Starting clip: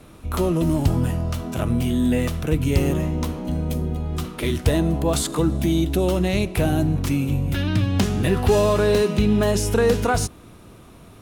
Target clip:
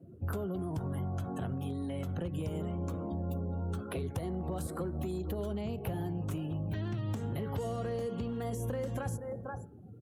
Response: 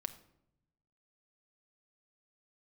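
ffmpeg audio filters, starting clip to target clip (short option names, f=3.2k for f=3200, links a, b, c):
-filter_complex "[0:a]highpass=f=69:w=0.5412,highpass=f=69:w=1.3066,asplit=2[a][b];[b]aecho=0:1:538:0.133[c];[a][c]amix=inputs=2:normalize=0,afftdn=nr=30:nf=-39,bandreject=f=126.7:t=h:w=4,bandreject=f=253.4:t=h:w=4,bandreject=f=380.1:t=h:w=4,bandreject=f=506.8:t=h:w=4,bandreject=f=633.5:t=h:w=4,bandreject=f=760.2:t=h:w=4,bandreject=f=886.9:t=h:w=4,bandreject=f=1.0136k:t=h:w=4,bandreject=f=1.1403k:t=h:w=4,bandreject=f=1.267k:t=h:w=4,bandreject=f=1.3937k:t=h:w=4,bandreject=f=1.5204k:t=h:w=4,bandreject=f=1.6471k:t=h:w=4,bandreject=f=1.7738k:t=h:w=4,bandreject=f=1.9005k:t=h:w=4,bandreject=f=2.0272k:t=h:w=4,acrossover=split=440|1700[d][e][f];[d]acompressor=threshold=-22dB:ratio=4[g];[e]acompressor=threshold=-37dB:ratio=4[h];[f]acompressor=threshold=-37dB:ratio=4[i];[g][h][i]amix=inputs=3:normalize=0,asoftclip=type=hard:threshold=-17dB,acompressor=threshold=-32dB:ratio=4,equalizer=f=250:t=o:w=1:g=-5,equalizer=f=2k:t=o:w=1:g=-5,equalizer=f=4k:t=o:w=1:g=-11,asetrate=49392,aresample=44100"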